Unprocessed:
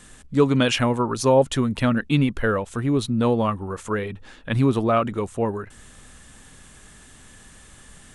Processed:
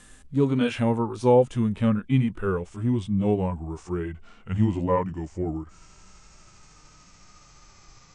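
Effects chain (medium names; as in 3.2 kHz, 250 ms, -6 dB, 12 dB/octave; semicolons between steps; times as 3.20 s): pitch bend over the whole clip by -6.5 st starting unshifted; harmonic-percussive split percussive -14 dB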